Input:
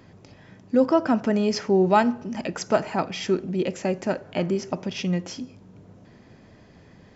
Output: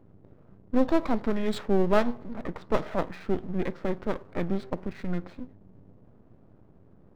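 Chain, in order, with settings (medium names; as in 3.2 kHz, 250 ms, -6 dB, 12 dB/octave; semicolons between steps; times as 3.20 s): level-controlled noise filter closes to 780 Hz, open at -15 dBFS; half-wave rectifier; formant shift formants -5 st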